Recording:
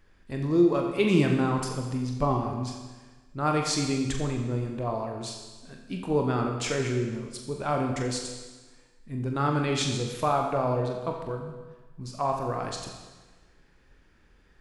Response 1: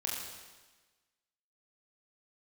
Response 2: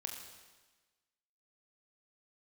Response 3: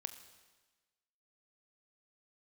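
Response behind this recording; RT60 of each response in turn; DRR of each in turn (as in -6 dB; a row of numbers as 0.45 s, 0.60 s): 2; 1.3 s, 1.3 s, 1.3 s; -4.0 dB, 1.5 dB, 9.0 dB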